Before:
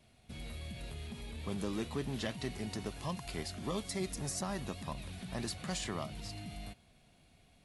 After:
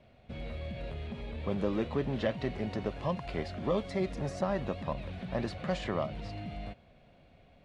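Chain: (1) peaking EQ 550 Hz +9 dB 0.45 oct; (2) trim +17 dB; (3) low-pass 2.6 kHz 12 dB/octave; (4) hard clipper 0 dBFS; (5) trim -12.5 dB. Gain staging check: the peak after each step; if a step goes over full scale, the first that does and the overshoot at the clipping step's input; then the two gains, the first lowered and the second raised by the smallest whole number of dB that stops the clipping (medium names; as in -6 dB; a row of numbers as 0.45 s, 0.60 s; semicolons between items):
-19.5 dBFS, -2.5 dBFS, -3.5 dBFS, -3.5 dBFS, -16.0 dBFS; nothing clips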